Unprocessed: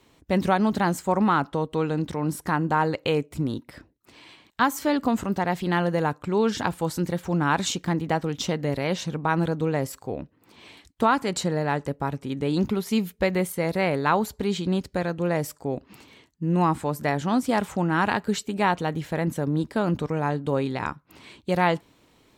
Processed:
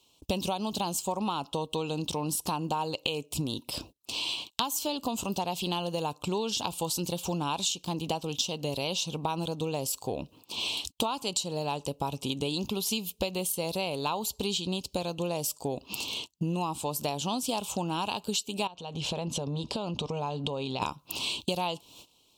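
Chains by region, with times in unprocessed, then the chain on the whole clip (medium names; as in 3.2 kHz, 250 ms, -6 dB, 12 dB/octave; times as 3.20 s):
18.67–20.82 s: band-stop 310 Hz, Q 6 + compression, threshold -35 dBFS + distance through air 100 m
whole clip: gate -54 dBFS, range -21 dB; FFT filter 290 Hz 0 dB, 1 kHz +6 dB, 1.9 kHz -19 dB, 2.7 kHz +15 dB; compression 10:1, threshold -35 dBFS; trim +7 dB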